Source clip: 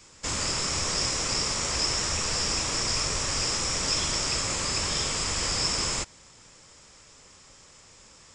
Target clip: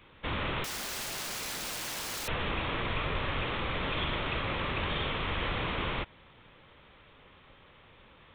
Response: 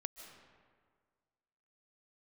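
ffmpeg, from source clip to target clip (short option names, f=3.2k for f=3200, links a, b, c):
-filter_complex "[0:a]aresample=8000,aresample=44100,asettb=1/sr,asplit=3[a][b][c];[a]atrim=end=0.644[d];[b]atrim=start=0.64:end=2.28,asetpts=PTS-STARTPTS,afade=t=in:d=0.004:c=qsin,afade=t=out:st=1.636:d=0.004:c=qsin,aeval=exprs='(mod(42.2*val(0)+1,2)-1)/42.2':c=same[e];[c]atrim=start=2.276[f];[d][e]acrossfade=d=0.004:c1=hsin:c2=qsin[g];[g][f]acrossfade=d=0.004:c1=qsin:c2=hsin"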